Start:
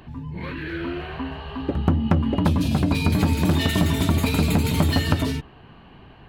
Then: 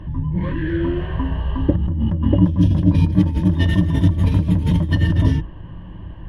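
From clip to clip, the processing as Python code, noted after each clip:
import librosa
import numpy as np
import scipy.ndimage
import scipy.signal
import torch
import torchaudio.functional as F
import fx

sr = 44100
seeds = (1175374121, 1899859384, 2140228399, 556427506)

y = fx.riaa(x, sr, side='playback')
y = fx.over_compress(y, sr, threshold_db=-13.0, ratio=-1.0)
y = fx.ripple_eq(y, sr, per_octave=1.2, db=11)
y = y * librosa.db_to_amplitude(-3.5)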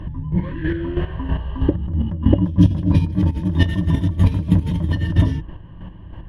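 y = fx.chopper(x, sr, hz=3.1, depth_pct=60, duty_pct=25)
y = y * librosa.db_to_amplitude(3.0)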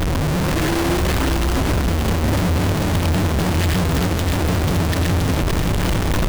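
y = np.sign(x) * np.sqrt(np.mean(np.square(x)))
y = y + 10.0 ** (-7.0 / 20.0) * np.pad(y, (int(569 * sr / 1000.0), 0))[:len(y)]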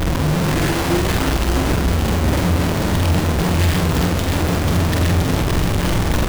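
y = fx.doubler(x, sr, ms=46.0, db=-4.5)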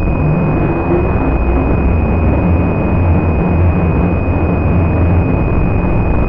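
y = fx.pwm(x, sr, carrier_hz=2500.0)
y = y * librosa.db_to_amplitude(5.5)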